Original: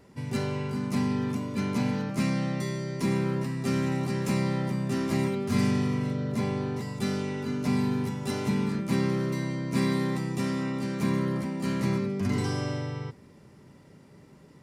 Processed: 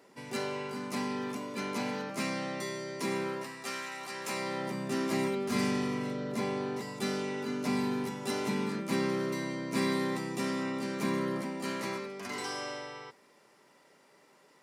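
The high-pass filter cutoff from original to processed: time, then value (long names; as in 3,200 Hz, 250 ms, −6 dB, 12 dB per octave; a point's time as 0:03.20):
0:03.22 370 Hz
0:03.92 1,100 Hz
0:04.78 280 Hz
0:11.42 280 Hz
0:12.11 600 Hz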